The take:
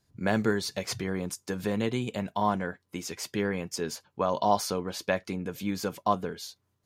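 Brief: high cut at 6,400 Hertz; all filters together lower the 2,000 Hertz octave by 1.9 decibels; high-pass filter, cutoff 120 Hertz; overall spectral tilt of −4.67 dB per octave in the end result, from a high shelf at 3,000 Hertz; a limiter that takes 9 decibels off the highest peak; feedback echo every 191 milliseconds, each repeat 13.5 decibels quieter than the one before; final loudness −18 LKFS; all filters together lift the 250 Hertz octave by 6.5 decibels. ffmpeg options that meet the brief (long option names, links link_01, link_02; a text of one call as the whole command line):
ffmpeg -i in.wav -af "highpass=120,lowpass=6400,equalizer=frequency=250:width_type=o:gain=9,equalizer=frequency=2000:width_type=o:gain=-5.5,highshelf=frequency=3000:gain=8.5,alimiter=limit=-18dB:level=0:latency=1,aecho=1:1:191|382:0.211|0.0444,volume=12dB" out.wav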